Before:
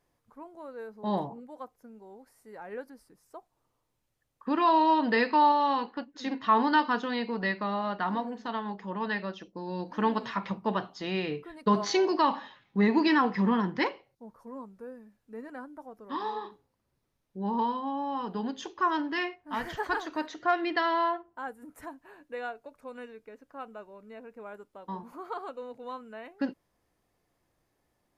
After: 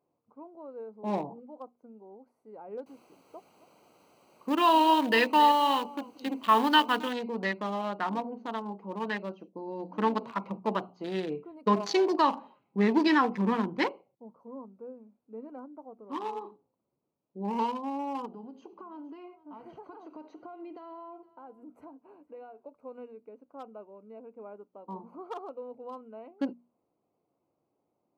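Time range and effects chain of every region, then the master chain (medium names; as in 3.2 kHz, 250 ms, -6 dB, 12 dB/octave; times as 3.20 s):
2.86–7.13 s: peaking EQ 3 kHz +13 dB 0.39 oct + word length cut 8-bit, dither triangular + delay 266 ms -17 dB
18.26–22.64 s: compression 4:1, threshold -42 dBFS + delay 465 ms -20.5 dB
whole clip: local Wiener filter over 25 samples; high-pass 190 Hz; hum notches 60/120/180/240 Hz; trim +1 dB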